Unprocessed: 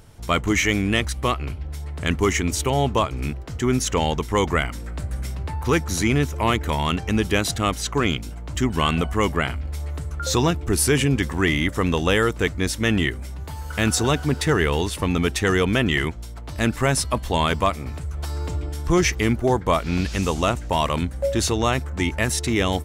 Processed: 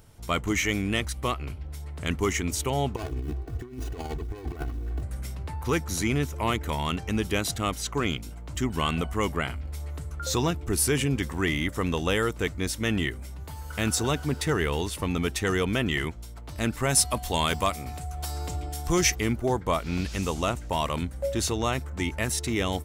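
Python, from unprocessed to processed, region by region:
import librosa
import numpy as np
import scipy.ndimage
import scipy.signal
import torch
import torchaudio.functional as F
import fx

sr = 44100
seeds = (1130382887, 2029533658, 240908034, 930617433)

y = fx.chain(x, sr, fx.median_filter(points=41),
    fx.comb(ms=2.7, depth=0.74),
    fx.over_compress(threshold_db=-25.0, ratio=-0.5), at=(2.96, 5.03))
y = fx.high_shelf(y, sr, hz=3300.0, db=8.5, at=(16.89, 19.14), fade=0.02)
y = fx.dmg_tone(y, sr, hz=730.0, level_db=-35.0, at=(16.89, 19.14), fade=0.02)
y = fx.high_shelf(y, sr, hz=11000.0, db=7.0)
y = fx.notch(y, sr, hz=1700.0, q=28.0)
y = y * 10.0 ** (-6.0 / 20.0)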